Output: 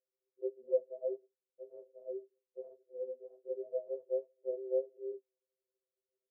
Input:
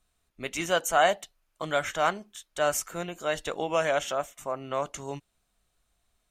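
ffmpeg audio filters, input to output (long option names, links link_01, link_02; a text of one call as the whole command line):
ffmpeg -i in.wav -af "afreqshift=-13,asuperpass=centerf=440:order=20:qfactor=1.6,afftfilt=real='re*2.45*eq(mod(b,6),0)':imag='im*2.45*eq(mod(b,6),0)':win_size=2048:overlap=0.75,volume=-1dB" out.wav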